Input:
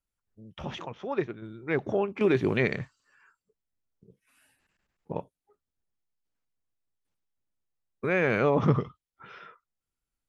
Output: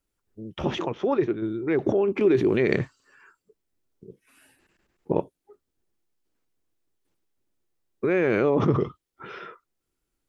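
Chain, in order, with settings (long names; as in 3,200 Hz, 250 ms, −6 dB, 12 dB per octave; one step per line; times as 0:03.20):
parametric band 350 Hz +10.5 dB 0.82 octaves
in parallel at +2.5 dB: compressor whose output falls as the input rises −28 dBFS, ratio −1
on the sum: level −5 dB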